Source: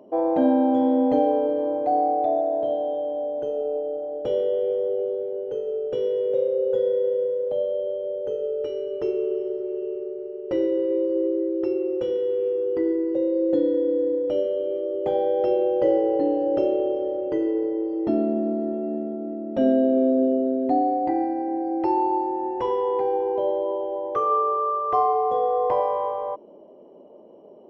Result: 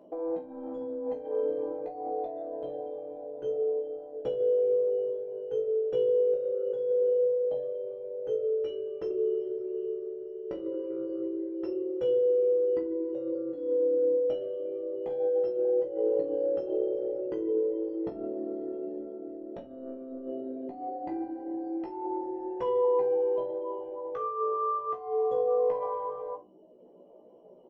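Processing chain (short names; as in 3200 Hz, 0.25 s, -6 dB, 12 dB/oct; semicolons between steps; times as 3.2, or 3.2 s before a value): reverb removal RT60 0.88 s; negative-ratio compressor -26 dBFS, ratio -0.5; doubler 16 ms -5 dB; reverb RT60 0.35 s, pre-delay 6 ms, DRR 5 dB; gain -9 dB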